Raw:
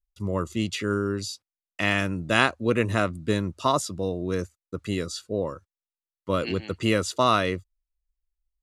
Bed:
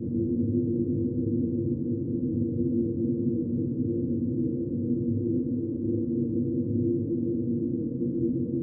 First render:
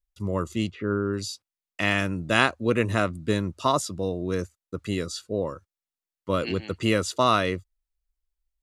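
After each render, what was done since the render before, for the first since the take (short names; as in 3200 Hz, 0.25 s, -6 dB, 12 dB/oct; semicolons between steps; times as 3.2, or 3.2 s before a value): 0.7–1.12 LPF 1100 Hz -> 2300 Hz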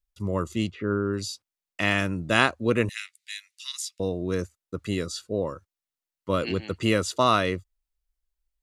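2.89–4 elliptic high-pass 2000 Hz, stop band 70 dB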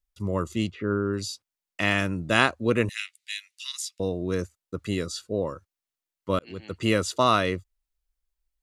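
2.98–3.67 dynamic EQ 2900 Hz, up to +7 dB, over -52 dBFS, Q 2.5; 6.39–6.91 fade in linear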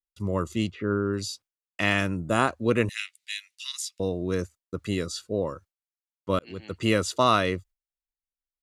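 gate with hold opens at -47 dBFS; 2.17–2.48 spectral gain 1500–6500 Hz -10 dB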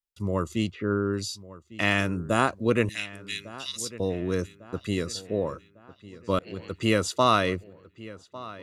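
darkening echo 1.151 s, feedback 50%, low-pass 3600 Hz, level -18 dB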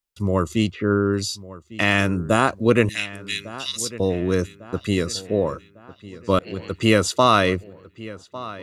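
gain +6.5 dB; limiter -3 dBFS, peak gain reduction 3 dB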